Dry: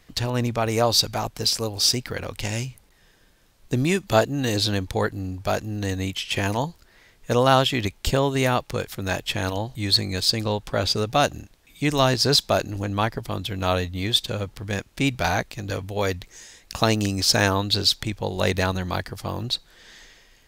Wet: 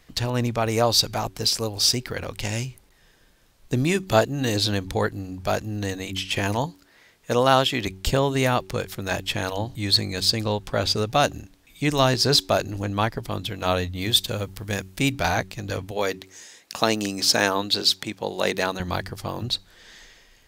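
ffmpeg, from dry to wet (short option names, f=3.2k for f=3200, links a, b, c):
-filter_complex "[0:a]asettb=1/sr,asplit=3[a][b][c];[a]atrim=end=6.664[d];[b]atrim=start=6.66:end=7.87,asetpts=PTS-STARTPTS,afade=t=in:d=0.004:c=qsin,afade=t=out:st=1.206:d=0.004:c=qsin,highpass=f=160:p=1[e];[c]atrim=start=7.866[f];[d][e]acrossfade=d=0.004:c1=hsin:c2=qsin[g];[g][f]acrossfade=d=0.004:c1=qsin:c2=hsin,asettb=1/sr,asplit=3[h][i][j];[h]atrim=end=14.014[k];[i]atrim=start=14.01:end=15.12,asetpts=PTS-STARTPTS,afade=t=in:d=0.004:c=qsin,afade=t=out:st=1.106:d=0.004:c=qsin,highshelf=f=9.3k:g=11.5[l];[j]atrim=start=15.116[m];[k][l]acrossfade=d=0.004:c1=hsin:c2=qsin[n];[n][m]acrossfade=d=0.004:c1=qsin:c2=hsin,asettb=1/sr,asplit=3[o][p][q];[o]atrim=end=15.914[r];[p]atrim=start=15.91:end=18.8,asetpts=PTS-STARTPTS,afade=t=in:d=0.004:c=qsin,afade=t=out:st=2.886:d=0.004:c=qsin,highpass=210[s];[q]atrim=start=18.796[t];[r][s]acrossfade=d=0.004:c1=hsin:c2=qsin[u];[u][t]acrossfade=d=0.004:c1=qsin:c2=hsin,bandreject=f=94.67:t=h:w=4,bandreject=f=189.34:t=h:w=4,bandreject=f=284.01:t=h:w=4,bandreject=f=378.68:t=h:w=4"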